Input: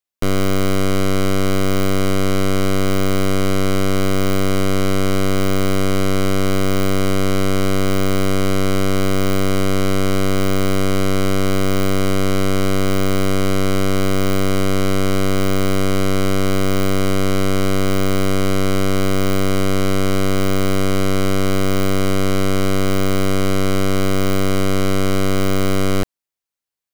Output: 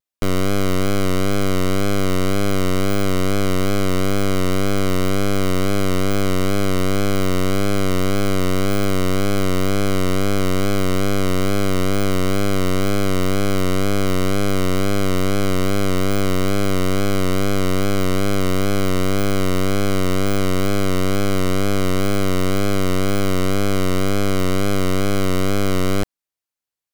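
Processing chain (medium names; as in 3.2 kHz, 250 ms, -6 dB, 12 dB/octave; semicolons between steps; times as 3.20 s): wow and flutter 68 cents; trim -1.5 dB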